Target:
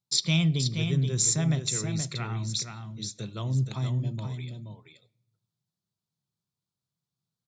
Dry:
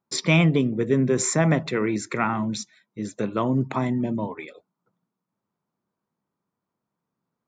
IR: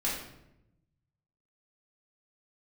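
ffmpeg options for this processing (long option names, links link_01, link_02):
-filter_complex "[0:a]equalizer=frequency=125:width_type=o:width=1:gain=9,equalizer=frequency=250:width_type=o:width=1:gain=-12,equalizer=frequency=500:width_type=o:width=1:gain=-8,equalizer=frequency=1000:width_type=o:width=1:gain=-9,equalizer=frequency=2000:width_type=o:width=1:gain=-10,equalizer=frequency=4000:width_type=o:width=1:gain=11,equalizer=frequency=8000:width_type=o:width=1:gain=4,aecho=1:1:476:0.473,asplit=2[link_01][link_02];[1:a]atrim=start_sample=2205,adelay=19[link_03];[link_02][link_03]afir=irnorm=-1:irlink=0,volume=-28.5dB[link_04];[link_01][link_04]amix=inputs=2:normalize=0,volume=-4.5dB"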